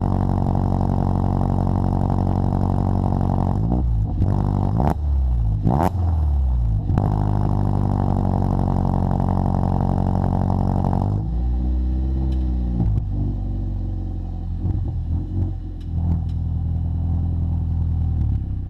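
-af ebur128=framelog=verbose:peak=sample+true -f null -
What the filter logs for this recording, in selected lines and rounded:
Integrated loudness:
  I:         -21.8 LUFS
  Threshold: -31.8 LUFS
Loudness range:
  LRA:         4.2 LU
  Threshold: -41.8 LUFS
  LRA low:   -25.0 LUFS
  LRA high:  -20.8 LUFS
Sample peak:
  Peak:       -3.5 dBFS
True peak:
  Peak:       -3.5 dBFS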